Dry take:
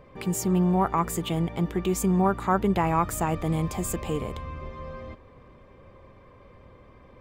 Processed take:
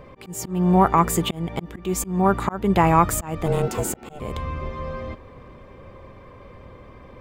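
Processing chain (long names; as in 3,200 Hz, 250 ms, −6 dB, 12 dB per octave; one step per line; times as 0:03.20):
volume swells 316 ms
0:03.46–0:04.20: ring modulation 300 Hz
level +7.5 dB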